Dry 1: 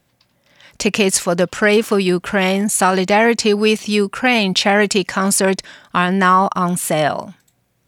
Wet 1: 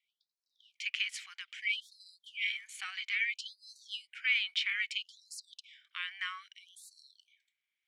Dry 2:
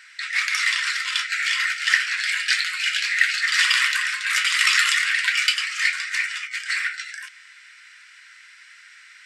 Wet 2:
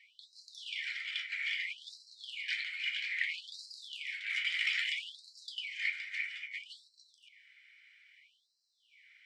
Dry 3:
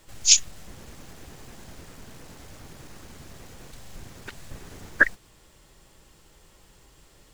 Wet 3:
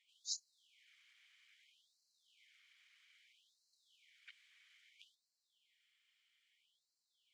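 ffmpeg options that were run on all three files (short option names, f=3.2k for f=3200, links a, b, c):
-filter_complex "[0:a]asubboost=boost=11.5:cutoff=190,asplit=3[a][b][c];[a]bandpass=f=270:t=q:w=8,volume=0dB[d];[b]bandpass=f=2.29k:t=q:w=8,volume=-6dB[e];[c]bandpass=f=3.01k:t=q:w=8,volume=-9dB[f];[d][e][f]amix=inputs=3:normalize=0,afftfilt=real='re*gte(b*sr/1024,750*pow(4000/750,0.5+0.5*sin(2*PI*0.61*pts/sr)))':imag='im*gte(b*sr/1024,750*pow(4000/750,0.5+0.5*sin(2*PI*0.61*pts/sr)))':win_size=1024:overlap=0.75,volume=-1.5dB"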